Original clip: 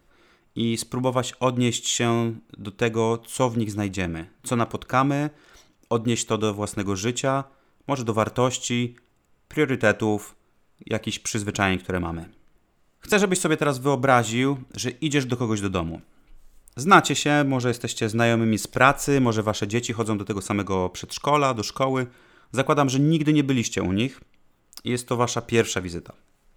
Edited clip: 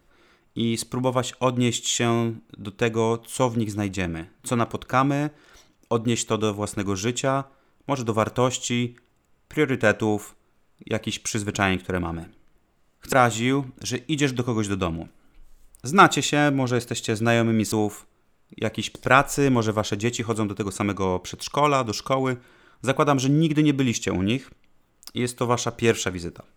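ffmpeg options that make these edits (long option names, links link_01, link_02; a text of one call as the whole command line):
ffmpeg -i in.wav -filter_complex "[0:a]asplit=4[link_01][link_02][link_03][link_04];[link_01]atrim=end=13.132[link_05];[link_02]atrim=start=14.058:end=18.652[link_06];[link_03]atrim=start=10.008:end=11.242[link_07];[link_04]atrim=start=18.648[link_08];[link_05][link_06]acrossfade=duration=0.004:curve1=hsin:curve2=hsin[link_09];[link_09][link_07]acrossfade=duration=0.004:curve1=hsin:curve2=hsin[link_10];[link_10][link_08]acrossfade=duration=0.004:curve1=hsin:curve2=hsin" out.wav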